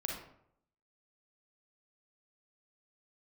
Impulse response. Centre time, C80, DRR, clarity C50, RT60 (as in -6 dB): 43 ms, 6.5 dB, -0.5 dB, 2.0 dB, 0.70 s